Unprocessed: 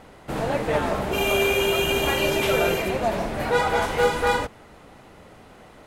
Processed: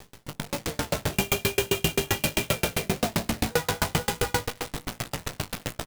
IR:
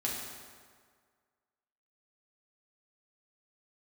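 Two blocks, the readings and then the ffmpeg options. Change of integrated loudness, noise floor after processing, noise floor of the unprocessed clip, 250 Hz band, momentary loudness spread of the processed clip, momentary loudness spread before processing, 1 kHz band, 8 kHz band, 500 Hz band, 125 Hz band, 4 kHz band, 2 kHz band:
−5.0 dB, −56 dBFS, −48 dBFS, −2.0 dB, 9 LU, 6 LU, −7.5 dB, +4.0 dB, −8.0 dB, +1.5 dB, −2.0 dB, −5.5 dB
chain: -af "equalizer=frequency=120:width=0.55:gain=13.5,acompressor=threshold=-29dB:ratio=12,aecho=1:1:190|380|570|760:0.266|0.114|0.0492|0.0212,dynaudnorm=framelen=120:gausssize=11:maxgain=12.5dB,bandreject=frequency=130.9:width_type=h:width=4,bandreject=frequency=261.8:width_type=h:width=4,bandreject=frequency=392.7:width_type=h:width=4,bandreject=frequency=523.6:width_type=h:width=4,bandreject=frequency=654.5:width_type=h:width=4,bandreject=frequency=785.4:width_type=h:width=4,bandreject=frequency=916.3:width_type=h:width=4,bandreject=frequency=1047.2:width_type=h:width=4,bandreject=frequency=1178.1:width_type=h:width=4,bandreject=frequency=1309:width_type=h:width=4,bandreject=frequency=1439.9:width_type=h:width=4,bandreject=frequency=1570.8:width_type=h:width=4,bandreject=frequency=1701.7:width_type=h:width=4,bandreject=frequency=1832.6:width_type=h:width=4,bandreject=frequency=1963.5:width_type=h:width=4,bandreject=frequency=2094.4:width_type=h:width=4,bandreject=frequency=2225.3:width_type=h:width=4,acrusher=bits=5:dc=4:mix=0:aa=0.000001,flanger=delay=17:depth=3.3:speed=1.2,asoftclip=type=tanh:threshold=-16.5dB,highshelf=frequency=2100:gain=8.5,aeval=exprs='val(0)*pow(10,-36*if(lt(mod(7.6*n/s,1),2*abs(7.6)/1000),1-mod(7.6*n/s,1)/(2*abs(7.6)/1000),(mod(7.6*n/s,1)-2*abs(7.6)/1000)/(1-2*abs(7.6)/1000))/20)':channel_layout=same,volume=4.5dB"

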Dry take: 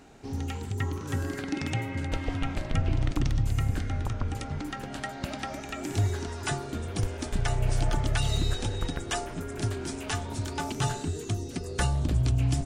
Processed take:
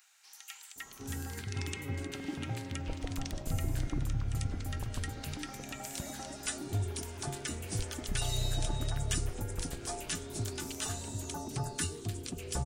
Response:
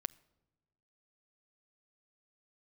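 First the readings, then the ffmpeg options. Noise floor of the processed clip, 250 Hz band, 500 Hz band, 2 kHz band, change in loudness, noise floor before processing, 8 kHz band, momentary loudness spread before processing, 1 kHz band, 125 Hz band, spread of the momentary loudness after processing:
−53 dBFS, −7.5 dB, −7.5 dB, −7.0 dB, −6.5 dB, −39 dBFS, +1.0 dB, 8 LU, −8.5 dB, −8.0 dB, 7 LU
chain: -filter_complex "[0:a]aemphasis=mode=production:type=50kf,acrossover=split=1200[link_01][link_02];[link_01]adelay=760[link_03];[link_03][link_02]amix=inputs=2:normalize=0,volume=-7dB"

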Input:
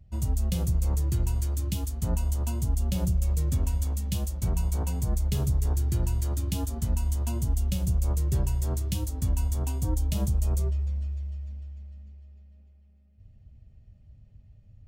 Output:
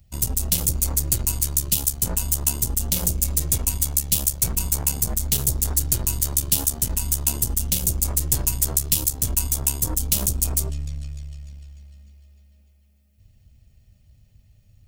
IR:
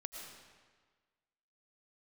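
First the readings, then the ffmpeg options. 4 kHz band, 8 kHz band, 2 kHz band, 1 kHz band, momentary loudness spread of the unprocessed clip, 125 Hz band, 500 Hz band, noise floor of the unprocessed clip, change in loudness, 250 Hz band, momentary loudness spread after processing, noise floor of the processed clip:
+13.0 dB, +19.0 dB, +9.0 dB, +3.5 dB, 4 LU, −1.5 dB, +2.0 dB, −55 dBFS, +7.5 dB, +0.5 dB, 4 LU, −57 dBFS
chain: -af "aeval=exprs='0.15*(cos(1*acos(clip(val(0)/0.15,-1,1)))-cos(1*PI/2))+0.0211*(cos(6*acos(clip(val(0)/0.15,-1,1)))-cos(6*PI/2))':channel_layout=same,crystalizer=i=8.5:c=0,volume=-2dB"

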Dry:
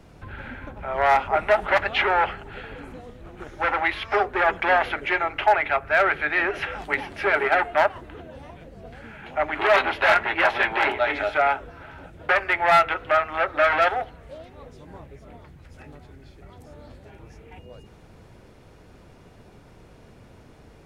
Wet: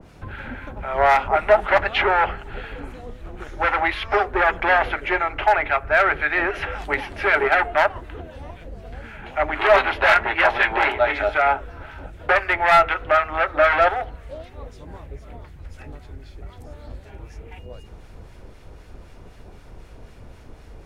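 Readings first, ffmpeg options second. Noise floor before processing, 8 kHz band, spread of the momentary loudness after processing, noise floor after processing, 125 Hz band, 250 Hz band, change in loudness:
−50 dBFS, can't be measured, 22 LU, −45 dBFS, +5.5 dB, +2.0 dB, +2.5 dB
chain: -filter_complex "[0:a]asubboost=boost=3.5:cutoff=71,acrossover=split=1200[link_01][link_02];[link_01]aeval=exprs='val(0)*(1-0.5/2+0.5/2*cos(2*PI*3.9*n/s))':channel_layout=same[link_03];[link_02]aeval=exprs='val(0)*(1-0.5/2-0.5/2*cos(2*PI*3.9*n/s))':channel_layout=same[link_04];[link_03][link_04]amix=inputs=2:normalize=0,adynamicequalizer=threshold=0.0158:dfrequency=2300:dqfactor=0.7:tfrequency=2300:tqfactor=0.7:attack=5:release=100:ratio=0.375:range=1.5:mode=cutabove:tftype=highshelf,volume=5.5dB"

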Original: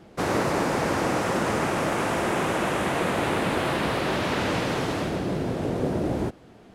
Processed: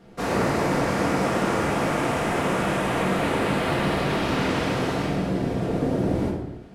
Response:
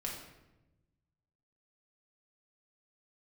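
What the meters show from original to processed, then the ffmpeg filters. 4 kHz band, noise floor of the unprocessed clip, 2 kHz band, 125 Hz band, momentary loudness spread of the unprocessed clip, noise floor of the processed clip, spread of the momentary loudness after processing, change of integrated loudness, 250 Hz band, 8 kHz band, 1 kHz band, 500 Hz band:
0.0 dB, −50 dBFS, +0.5 dB, +3.0 dB, 3 LU, −40 dBFS, 3 LU, +1.5 dB, +2.5 dB, −1.0 dB, +1.0 dB, +1.0 dB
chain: -filter_complex "[1:a]atrim=start_sample=2205,afade=type=out:start_time=0.43:duration=0.01,atrim=end_sample=19404[link_01];[0:a][link_01]afir=irnorm=-1:irlink=0"

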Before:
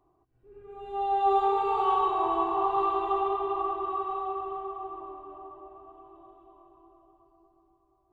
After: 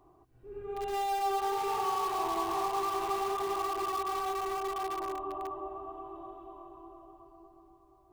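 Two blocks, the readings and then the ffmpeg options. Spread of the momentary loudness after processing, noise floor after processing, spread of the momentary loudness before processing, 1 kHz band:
16 LU, −63 dBFS, 19 LU, −4.5 dB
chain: -filter_complex "[0:a]acompressor=threshold=-37dB:ratio=3,asplit=2[link_01][link_02];[link_02]aeval=exprs='(mod(63.1*val(0)+1,2)-1)/63.1':channel_layout=same,volume=-9dB[link_03];[link_01][link_03]amix=inputs=2:normalize=0,volume=4.5dB"

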